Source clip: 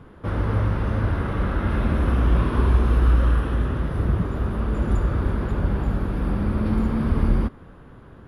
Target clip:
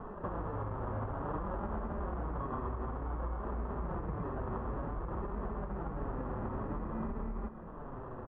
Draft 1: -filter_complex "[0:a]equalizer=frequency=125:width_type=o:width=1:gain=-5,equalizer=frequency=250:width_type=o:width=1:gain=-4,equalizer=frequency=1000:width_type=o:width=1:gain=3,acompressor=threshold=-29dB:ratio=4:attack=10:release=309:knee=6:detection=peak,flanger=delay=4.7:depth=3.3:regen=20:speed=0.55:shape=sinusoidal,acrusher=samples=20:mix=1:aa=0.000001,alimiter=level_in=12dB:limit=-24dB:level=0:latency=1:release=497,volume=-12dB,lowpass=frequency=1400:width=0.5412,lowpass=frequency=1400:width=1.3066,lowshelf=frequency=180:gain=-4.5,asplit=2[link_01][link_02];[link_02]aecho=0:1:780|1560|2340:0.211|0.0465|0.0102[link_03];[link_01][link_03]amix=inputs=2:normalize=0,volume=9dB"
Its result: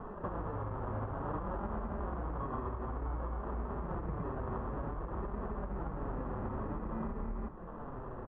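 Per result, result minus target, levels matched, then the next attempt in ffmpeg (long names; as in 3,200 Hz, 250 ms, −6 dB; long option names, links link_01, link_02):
echo 215 ms late; downward compressor: peak gain reduction +4.5 dB
-filter_complex "[0:a]equalizer=frequency=125:width_type=o:width=1:gain=-5,equalizer=frequency=250:width_type=o:width=1:gain=-4,equalizer=frequency=1000:width_type=o:width=1:gain=3,acompressor=threshold=-29dB:ratio=4:attack=10:release=309:knee=6:detection=peak,flanger=delay=4.7:depth=3.3:regen=20:speed=0.55:shape=sinusoidal,acrusher=samples=20:mix=1:aa=0.000001,alimiter=level_in=12dB:limit=-24dB:level=0:latency=1:release=497,volume=-12dB,lowpass=frequency=1400:width=0.5412,lowpass=frequency=1400:width=1.3066,lowshelf=frequency=180:gain=-4.5,asplit=2[link_01][link_02];[link_02]aecho=0:1:565|1130|1695:0.211|0.0465|0.0102[link_03];[link_01][link_03]amix=inputs=2:normalize=0,volume=9dB"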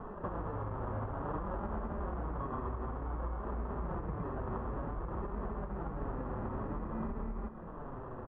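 downward compressor: peak gain reduction +4.5 dB
-filter_complex "[0:a]equalizer=frequency=125:width_type=o:width=1:gain=-5,equalizer=frequency=250:width_type=o:width=1:gain=-4,equalizer=frequency=1000:width_type=o:width=1:gain=3,acompressor=threshold=-23dB:ratio=4:attack=10:release=309:knee=6:detection=peak,flanger=delay=4.7:depth=3.3:regen=20:speed=0.55:shape=sinusoidal,acrusher=samples=20:mix=1:aa=0.000001,alimiter=level_in=12dB:limit=-24dB:level=0:latency=1:release=497,volume=-12dB,lowpass=frequency=1400:width=0.5412,lowpass=frequency=1400:width=1.3066,lowshelf=frequency=180:gain=-4.5,asplit=2[link_01][link_02];[link_02]aecho=0:1:565|1130|1695:0.211|0.0465|0.0102[link_03];[link_01][link_03]amix=inputs=2:normalize=0,volume=9dB"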